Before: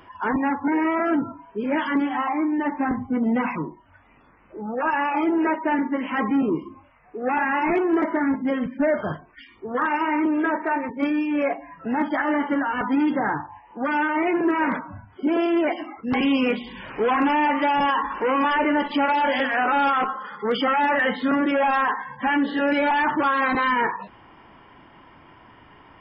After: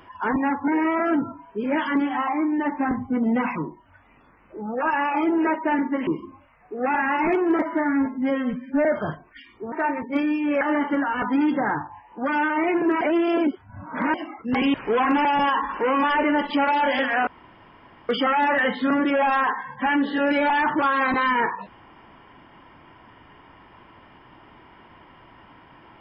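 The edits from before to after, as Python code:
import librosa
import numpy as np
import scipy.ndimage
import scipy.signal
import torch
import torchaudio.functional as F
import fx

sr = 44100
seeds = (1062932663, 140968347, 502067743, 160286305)

y = fx.edit(x, sr, fx.cut(start_s=6.07, length_s=0.43),
    fx.stretch_span(start_s=8.05, length_s=0.82, factor=1.5),
    fx.cut(start_s=9.74, length_s=0.85),
    fx.cut(start_s=11.48, length_s=0.72),
    fx.reverse_span(start_s=14.6, length_s=1.13),
    fx.cut(start_s=16.33, length_s=0.52),
    fx.cut(start_s=17.36, length_s=0.3),
    fx.room_tone_fill(start_s=19.68, length_s=0.82), tone=tone)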